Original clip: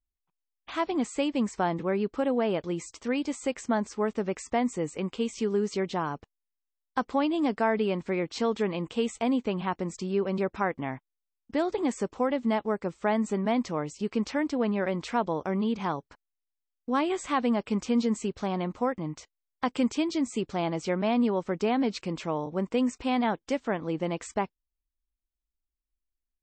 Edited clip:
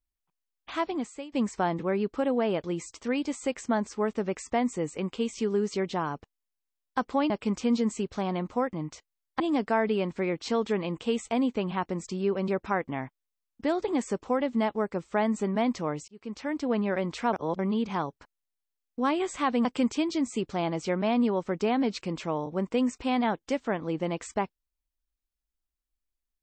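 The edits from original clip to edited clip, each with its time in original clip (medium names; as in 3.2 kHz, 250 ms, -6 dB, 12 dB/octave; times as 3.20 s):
0.78–1.32 s: fade out, to -21 dB
13.98–14.61 s: fade in
15.23–15.49 s: reverse
17.55–19.65 s: move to 7.30 s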